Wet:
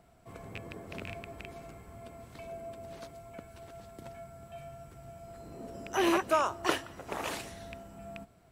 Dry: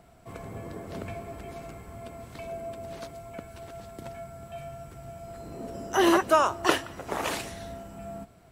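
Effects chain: rattle on loud lows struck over -36 dBFS, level -21 dBFS; trim -6 dB

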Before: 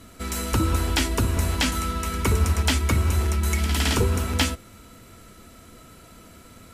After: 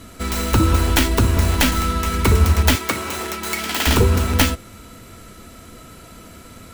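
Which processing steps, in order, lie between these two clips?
tracing distortion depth 0.24 ms; 2.75–3.87 s: Bessel high-pass 390 Hz, order 2; trim +6.5 dB

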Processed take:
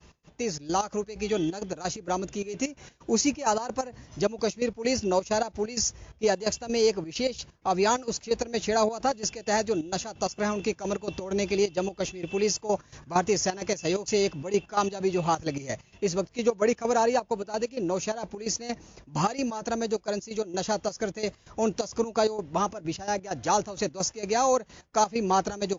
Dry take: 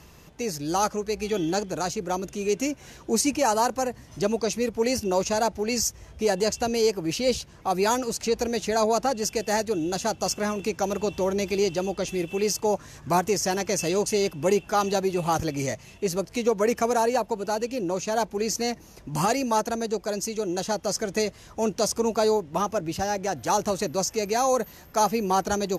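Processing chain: trance gate "x.xxx.x." 130 bpm -12 dB; expander -46 dBFS; MP3 64 kbps 16 kHz

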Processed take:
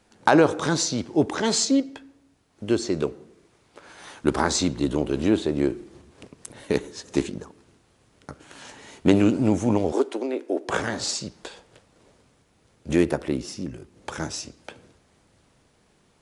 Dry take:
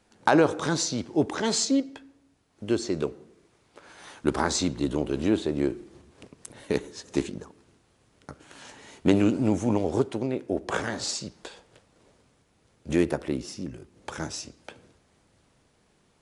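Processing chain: 9.92–10.69 s: steep high-pass 270 Hz 36 dB/octave; trim +3 dB

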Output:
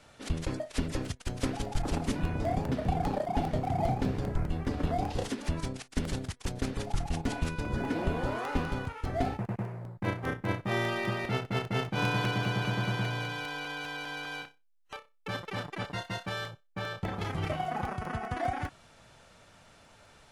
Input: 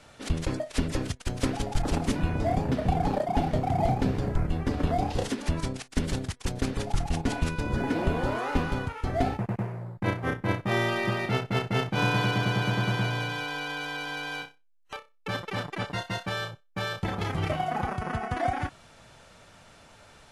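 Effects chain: 16.67–17.15 s: treble shelf 4 kHz -7 dB; crackling interface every 0.20 s, samples 64, repeat, from 0.65 s; trim -4 dB

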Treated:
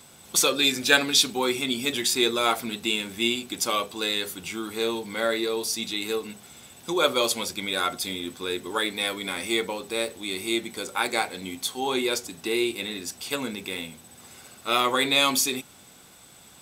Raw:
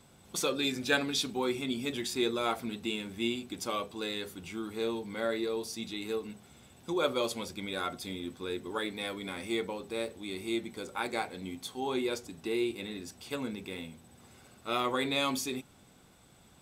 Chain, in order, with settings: tilt EQ +2 dB/octave; trim +8 dB

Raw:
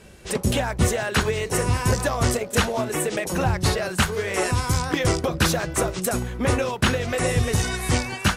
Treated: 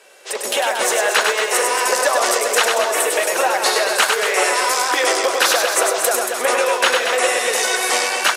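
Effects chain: level rider; high-pass 480 Hz 24 dB/octave; reverse bouncing-ball echo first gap 100 ms, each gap 1.3×, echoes 5; in parallel at -1 dB: compression, threshold -24 dBFS, peak gain reduction 13.5 dB; on the sum: trim -2.5 dB

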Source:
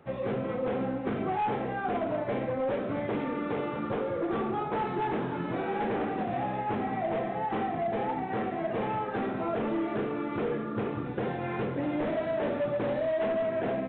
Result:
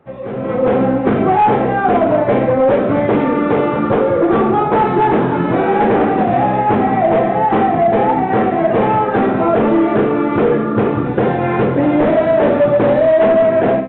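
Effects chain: treble shelf 2.2 kHz -10.5 dB; level rider gain up to 14 dB; bass shelf 390 Hz -3 dB; trim +5.5 dB

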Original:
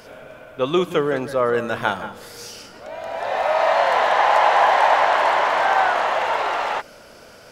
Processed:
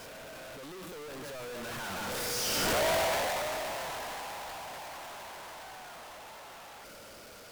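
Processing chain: one-bit comparator; Doppler pass-by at 2.87 s, 9 m/s, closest 2.8 m; trim -7 dB

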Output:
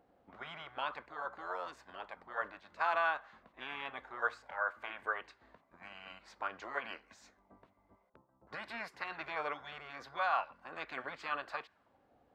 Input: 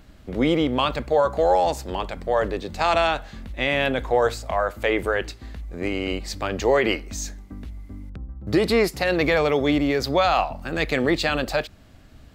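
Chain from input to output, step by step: auto-wah 580–1300 Hz, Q 13, up, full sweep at -25 dBFS; spectral gate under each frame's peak -10 dB weak; trim +9.5 dB

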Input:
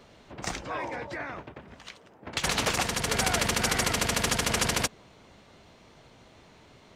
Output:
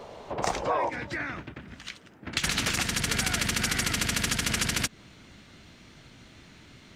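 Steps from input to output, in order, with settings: high-order bell 670 Hz +9 dB, from 0.88 s -9 dB; compression 4:1, threshold -29 dBFS, peak gain reduction 6.5 dB; trim +5 dB

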